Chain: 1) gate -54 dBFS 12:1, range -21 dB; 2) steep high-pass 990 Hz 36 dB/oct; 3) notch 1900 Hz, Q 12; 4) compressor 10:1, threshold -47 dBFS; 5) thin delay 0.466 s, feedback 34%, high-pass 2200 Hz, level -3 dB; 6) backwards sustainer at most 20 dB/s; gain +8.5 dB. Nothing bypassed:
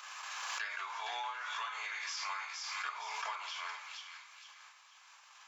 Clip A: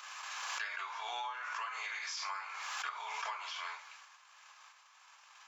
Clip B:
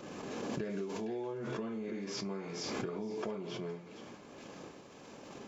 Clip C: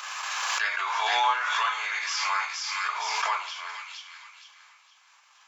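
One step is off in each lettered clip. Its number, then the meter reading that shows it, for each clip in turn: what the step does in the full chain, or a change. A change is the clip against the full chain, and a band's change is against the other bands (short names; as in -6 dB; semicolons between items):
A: 5, momentary loudness spread change +2 LU; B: 2, 500 Hz band +26.5 dB; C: 4, mean gain reduction 7.0 dB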